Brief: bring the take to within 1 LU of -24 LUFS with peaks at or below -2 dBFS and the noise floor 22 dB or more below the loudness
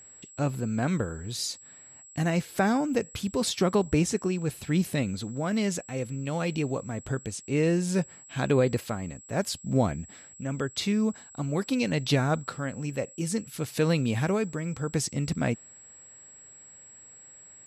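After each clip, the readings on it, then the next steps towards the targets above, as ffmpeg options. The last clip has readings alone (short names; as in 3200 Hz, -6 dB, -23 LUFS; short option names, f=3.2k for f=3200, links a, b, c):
steady tone 7700 Hz; tone level -48 dBFS; loudness -28.5 LUFS; peak -11.5 dBFS; loudness target -24.0 LUFS
-> -af "bandreject=f=7.7k:w=30"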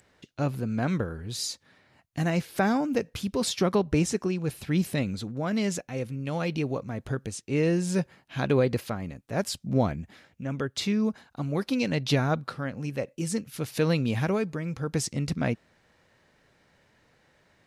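steady tone none; loudness -29.0 LUFS; peak -11.5 dBFS; loudness target -24.0 LUFS
-> -af "volume=5dB"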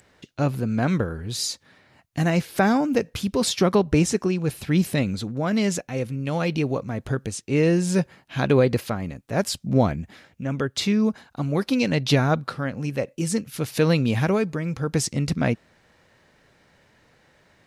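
loudness -24.0 LUFS; peak -6.5 dBFS; noise floor -60 dBFS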